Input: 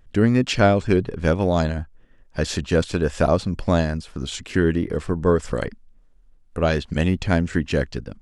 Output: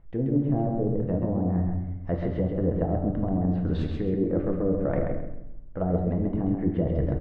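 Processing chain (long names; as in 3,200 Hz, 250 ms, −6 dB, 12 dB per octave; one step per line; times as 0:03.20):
treble cut that deepens with the level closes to 360 Hz, closed at −15 dBFS
low-pass filter 1,100 Hz 12 dB per octave
reversed playback
downward compressor 6 to 1, threshold −29 dBFS, peak gain reduction 15 dB
reversed playback
speed change +14%
on a send: repeating echo 133 ms, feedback 28%, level −4.5 dB
on the sum: rectangular room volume 170 cubic metres, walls mixed, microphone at 0.66 metres
level +4 dB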